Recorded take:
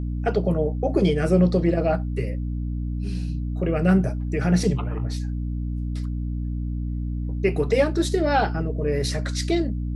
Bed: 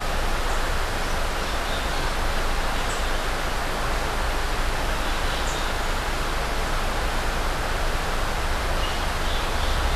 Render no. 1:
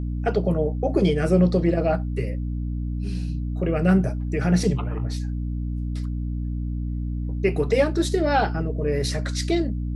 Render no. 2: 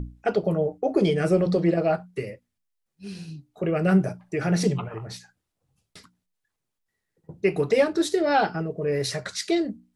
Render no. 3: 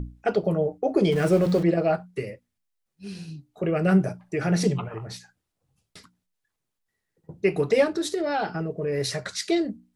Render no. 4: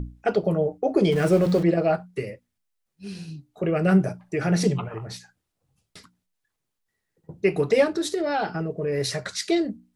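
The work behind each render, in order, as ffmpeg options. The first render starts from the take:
-af anull
-af "bandreject=f=60:t=h:w=6,bandreject=f=120:t=h:w=6,bandreject=f=180:t=h:w=6,bandreject=f=240:t=h:w=6,bandreject=f=300:t=h:w=6"
-filter_complex "[0:a]asettb=1/sr,asplit=3[s0][s1][s2];[s0]atrim=end=1.124[s3];[s1]atrim=start=1.12:end=1.63,asetpts=PTS-STARTPTS,afade=t=in:d=0.004:c=qsin,afade=t=out:st=0.506:d=0.004:c=qsin,aeval=exprs='val(0)+0.5*0.0237*sgn(val(0))':c=same[s4];[s2]atrim=start=1.626[s5];[s3][s4]acrossfade=d=0.004:c1=hsin:c2=qsin[s6];[s6][s5]acrossfade=d=0.004:c1=qsin:c2=hsin,asettb=1/sr,asplit=3[s7][s8][s9];[s7]atrim=end=7.894[s10];[s8]atrim=start=7.89:end=8.98,asetpts=PTS-STARTPTS,afade=t=in:d=0.004:c=qsin,afade=t=out:st=1.086:d=0.004:c=qsin,acompressor=threshold=0.0708:ratio=3:attack=3.2:release=140:knee=1:detection=peak[s11];[s9]atrim=start=8.976[s12];[s10][s11]acrossfade=d=0.004:c1=hsin:c2=qsin[s13];[s13][s12]acrossfade=d=0.004:c1=qsin:c2=hsin"
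-af "volume=1.12"

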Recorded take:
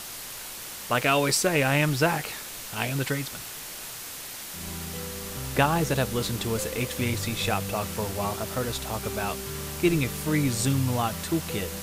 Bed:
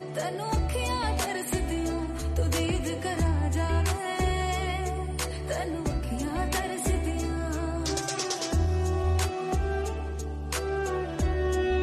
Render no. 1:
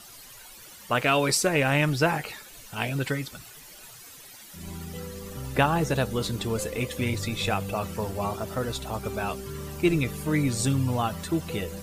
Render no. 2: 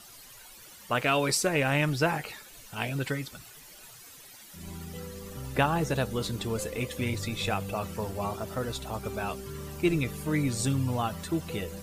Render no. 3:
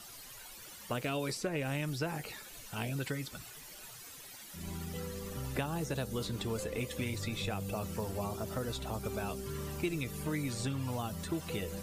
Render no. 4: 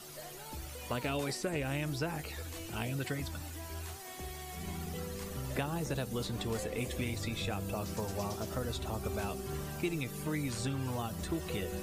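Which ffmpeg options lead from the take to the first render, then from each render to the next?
-af "afftdn=nr=13:nf=-39"
-af "volume=0.708"
-filter_complex "[0:a]acrossover=split=530|4100[s0][s1][s2];[s0]acompressor=threshold=0.0178:ratio=4[s3];[s1]acompressor=threshold=0.00794:ratio=4[s4];[s2]acompressor=threshold=0.00501:ratio=4[s5];[s3][s4][s5]amix=inputs=3:normalize=0"
-filter_complex "[1:a]volume=0.126[s0];[0:a][s0]amix=inputs=2:normalize=0"

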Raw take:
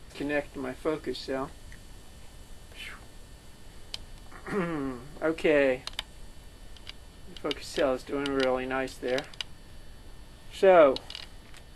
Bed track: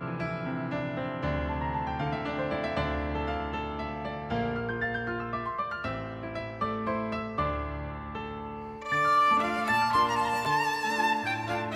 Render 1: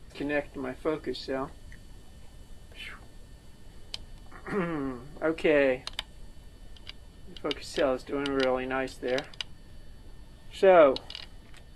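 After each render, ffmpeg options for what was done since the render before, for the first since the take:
-af "afftdn=nr=6:nf=-51"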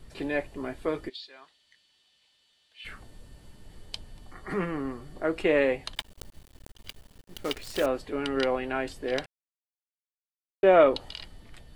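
-filter_complex "[0:a]asplit=3[s0][s1][s2];[s0]afade=t=out:st=1.08:d=0.02[s3];[s1]bandpass=f=3600:t=q:w=1.9,afade=t=in:st=1.08:d=0.02,afade=t=out:st=2.84:d=0.02[s4];[s2]afade=t=in:st=2.84:d=0.02[s5];[s3][s4][s5]amix=inputs=3:normalize=0,asettb=1/sr,asplit=3[s6][s7][s8];[s6]atrim=end=5.954[s9];[s7]atrim=start=5.95:end=7.86,asetpts=PTS-STARTPTS,afade=t=in:d=0.004:c=qsin,afade=t=out:st=1.906:d=0.004:c=qsin,acrusher=bits=7:dc=4:mix=0:aa=0.000001[s10];[s8]atrim=start=7.856[s11];[s9][s10]acrossfade=d=0.004:c1=hsin:c2=qsin[s12];[s12][s11]acrossfade=d=0.004:c1=qsin:c2=hsin,asplit=3[s13][s14][s15];[s13]atrim=end=9.26,asetpts=PTS-STARTPTS,afade=t=out:st=9.256:d=0.004:c=hsin[s16];[s14]atrim=start=9.26:end=10.63,asetpts=PTS-STARTPTS,volume=0[s17];[s15]atrim=start=10.63,asetpts=PTS-STARTPTS,afade=t=in:d=0.004:c=hsin[s18];[s16][s17][s18]concat=n=3:v=0:a=1"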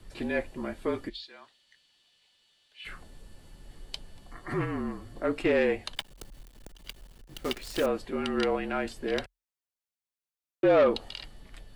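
-af "asoftclip=type=tanh:threshold=0.178,afreqshift=-41"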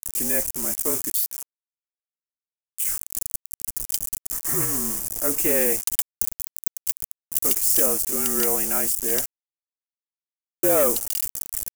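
-af "acrusher=bits=6:mix=0:aa=0.000001,aexciter=amount=14.2:drive=6.1:freq=5900"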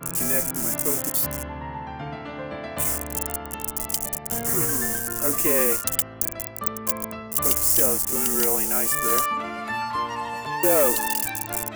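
-filter_complex "[1:a]volume=0.75[s0];[0:a][s0]amix=inputs=2:normalize=0"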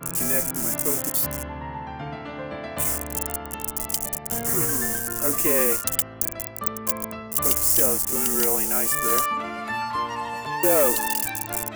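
-af anull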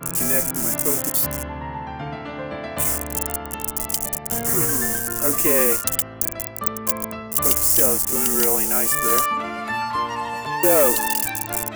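-af "volume=1.41,alimiter=limit=0.708:level=0:latency=1"

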